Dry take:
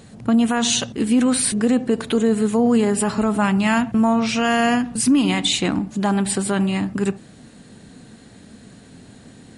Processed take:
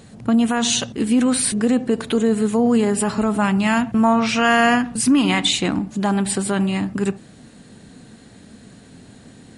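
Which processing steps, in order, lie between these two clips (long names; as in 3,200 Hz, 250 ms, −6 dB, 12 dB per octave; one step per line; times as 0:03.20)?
0:03.86–0:05.51: dynamic equaliser 1,400 Hz, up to +6 dB, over −31 dBFS, Q 0.73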